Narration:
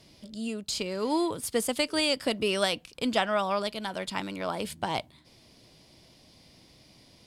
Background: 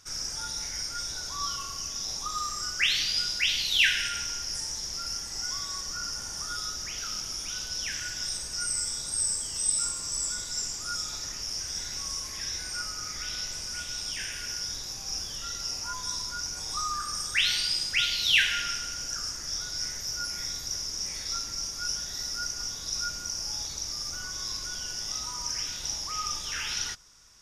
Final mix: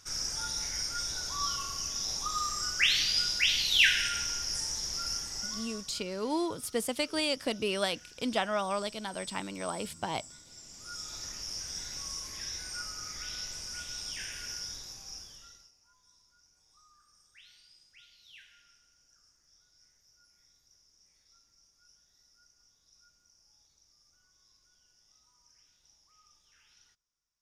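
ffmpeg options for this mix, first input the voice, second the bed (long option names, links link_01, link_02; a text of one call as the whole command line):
ffmpeg -i stem1.wav -i stem2.wav -filter_complex "[0:a]adelay=5200,volume=-4dB[link_01];[1:a]volume=14dB,afade=type=out:start_time=5.12:duration=0.89:silence=0.112202,afade=type=in:start_time=10.64:duration=0.61:silence=0.188365,afade=type=out:start_time=14.52:duration=1.19:silence=0.0421697[link_02];[link_01][link_02]amix=inputs=2:normalize=0" out.wav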